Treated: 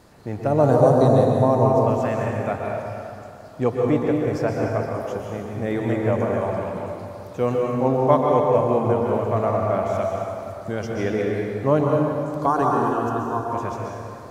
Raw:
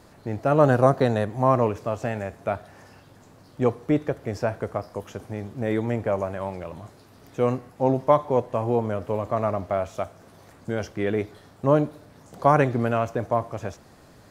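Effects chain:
0:00.47–0:01.82: flat-topped bell 1,900 Hz −11 dB
0:12.46–0:13.47: phaser with its sweep stopped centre 580 Hz, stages 6
dense smooth reverb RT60 2.7 s, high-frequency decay 0.6×, pre-delay 110 ms, DRR −1.5 dB

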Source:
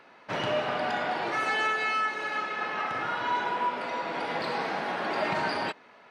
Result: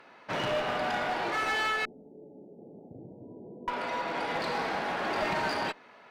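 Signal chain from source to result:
0:01.85–0:03.68: Gaussian smoothing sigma 22 samples
asymmetric clip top −29 dBFS

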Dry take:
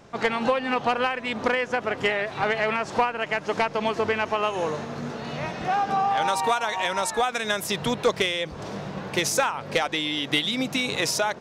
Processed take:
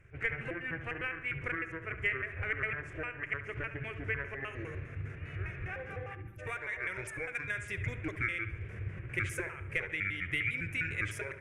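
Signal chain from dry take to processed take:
pitch shifter gated in a rhythm −7.5 semitones, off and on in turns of 101 ms
tilt shelving filter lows +4 dB, about 1,300 Hz
hum removal 414.6 Hz, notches 32
gain on a spectral selection 0:06.15–0:06.39, 380–11,000 Hz −28 dB
drawn EQ curve 110 Hz 0 dB, 230 Hz −25 dB, 370 Hz −13 dB, 880 Hz −27 dB, 1,600 Hz −2 dB, 2,300 Hz +3 dB, 4,100 Hz −28 dB, 10,000 Hz −4 dB, 15,000 Hz −16 dB
on a send: delay with a low-pass on its return 70 ms, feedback 51%, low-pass 3,200 Hz, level −11 dB
on the sum: level −3.5 dB

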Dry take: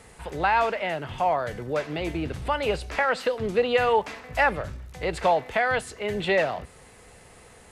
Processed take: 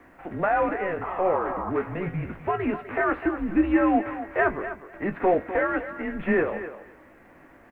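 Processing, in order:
variable-slope delta modulation 32 kbit/s
single-sideband voice off tune −180 Hz 210–2,300 Hz
sound drawn into the spectrogram noise, 0:01.02–0:01.71, 610–1,300 Hz −33 dBFS
pitch shifter +0.5 semitones
double-tracking delay 19 ms −9 dB
feedback echo with a high-pass in the loop 252 ms, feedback 16%, high-pass 280 Hz, level −11 dB
on a send at −21 dB: convolution reverb, pre-delay 3 ms
on the sum: bit-depth reduction 12 bits, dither none

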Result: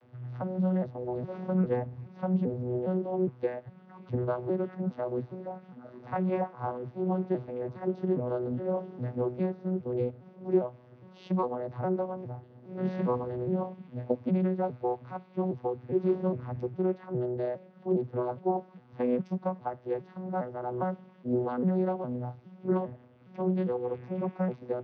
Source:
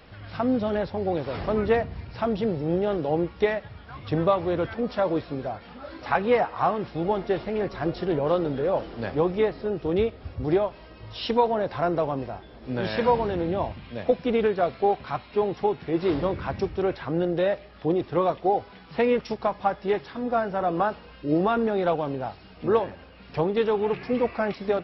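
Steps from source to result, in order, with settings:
vocoder with an arpeggio as carrier bare fifth, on B2, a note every 408 ms
high-shelf EQ 2,000 Hz −8.5 dB
level −4.5 dB

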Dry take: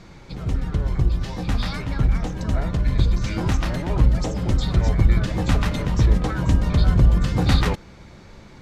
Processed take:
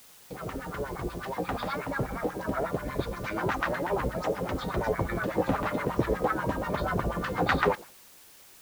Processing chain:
noise gate with hold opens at −31 dBFS
auto-filter band-pass sine 8.3 Hz 420–1,600 Hz
background noise white −61 dBFS
level +7.5 dB

